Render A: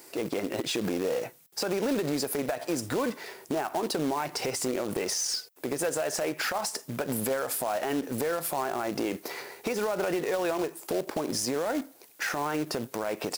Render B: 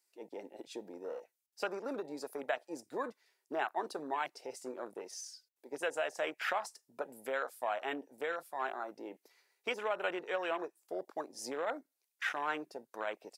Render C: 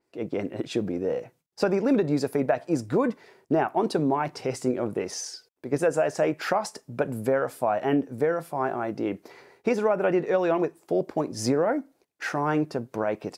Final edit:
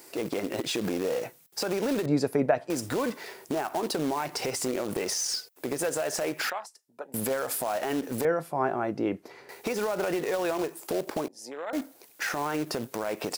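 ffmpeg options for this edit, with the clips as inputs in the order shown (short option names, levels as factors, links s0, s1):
-filter_complex "[2:a]asplit=2[s0][s1];[1:a]asplit=2[s2][s3];[0:a]asplit=5[s4][s5][s6][s7][s8];[s4]atrim=end=2.062[s9];[s0]atrim=start=2.058:end=2.702[s10];[s5]atrim=start=2.698:end=6.502[s11];[s2]atrim=start=6.498:end=7.142[s12];[s6]atrim=start=7.138:end=8.252[s13];[s1]atrim=start=8.248:end=9.492[s14];[s7]atrim=start=9.488:end=11.282[s15];[s3]atrim=start=11.278:end=11.732[s16];[s8]atrim=start=11.728[s17];[s9][s10]acrossfade=d=0.004:c1=hsin:c2=hsin[s18];[s18][s11]acrossfade=d=0.004:c1=hsin:c2=hsin[s19];[s19][s12]acrossfade=d=0.004:c1=hsin:c2=hsin[s20];[s20][s13]acrossfade=d=0.004:c1=hsin:c2=hsin[s21];[s21][s14]acrossfade=d=0.004:c1=hsin:c2=hsin[s22];[s22][s15]acrossfade=d=0.004:c1=hsin:c2=hsin[s23];[s23][s16]acrossfade=d=0.004:c1=hsin:c2=hsin[s24];[s24][s17]acrossfade=d=0.004:c1=hsin:c2=hsin"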